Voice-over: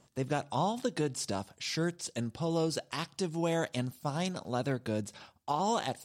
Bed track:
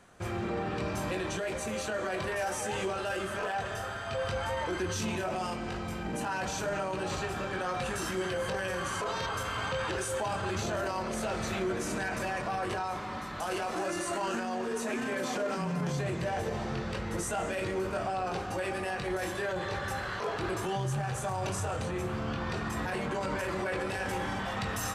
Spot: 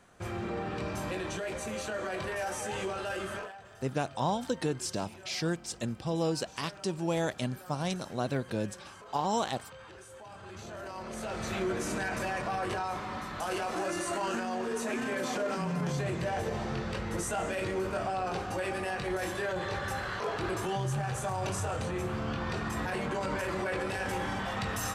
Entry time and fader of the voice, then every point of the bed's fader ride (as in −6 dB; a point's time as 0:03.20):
3.65 s, +0.5 dB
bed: 0:03.36 −2 dB
0:03.58 −17 dB
0:10.19 −17 dB
0:11.62 0 dB